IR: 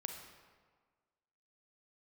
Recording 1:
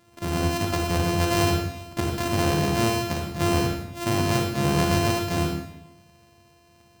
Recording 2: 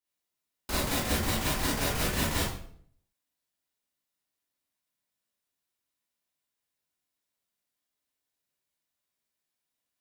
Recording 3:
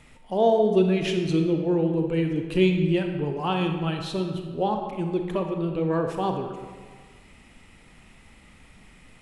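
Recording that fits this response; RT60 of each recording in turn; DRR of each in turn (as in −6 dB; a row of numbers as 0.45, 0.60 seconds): 3; 0.90, 0.55, 1.6 seconds; 1.0, −7.0, 4.0 decibels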